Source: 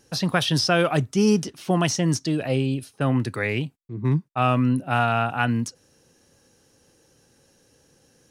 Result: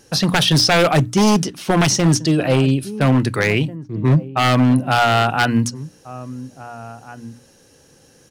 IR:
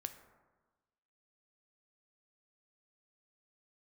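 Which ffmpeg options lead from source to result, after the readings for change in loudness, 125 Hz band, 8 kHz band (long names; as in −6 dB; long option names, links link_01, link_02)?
+6.5 dB, +7.0 dB, +8.5 dB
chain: -filter_complex "[0:a]bandreject=frequency=60:width_type=h:width=6,bandreject=frequency=120:width_type=h:width=6,bandreject=frequency=180:width_type=h:width=6,bandreject=frequency=240:width_type=h:width=6,bandreject=frequency=300:width_type=h:width=6,asplit=2[link_01][link_02];[link_02]adelay=1691,volume=-18dB,highshelf=frequency=4000:gain=-38[link_03];[link_01][link_03]amix=inputs=2:normalize=0,aeval=exprs='0.158*(abs(mod(val(0)/0.158+3,4)-2)-1)':channel_layout=same,volume=8.5dB"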